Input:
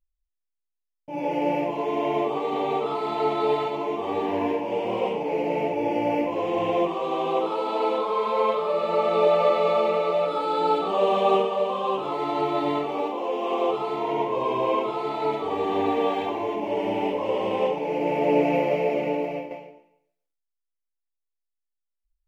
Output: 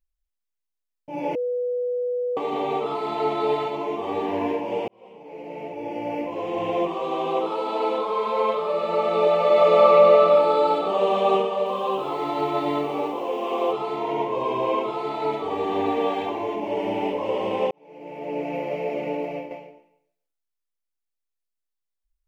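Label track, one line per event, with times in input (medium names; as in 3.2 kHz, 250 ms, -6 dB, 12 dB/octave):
1.350000	2.370000	bleep 492 Hz -22.5 dBFS
4.880000	7.000000	fade in
9.460000	10.240000	reverb throw, RT60 2.7 s, DRR -3.5 dB
11.530000	13.730000	bit-crushed delay 131 ms, feedback 55%, word length 8-bit, level -12 dB
17.710000	19.500000	fade in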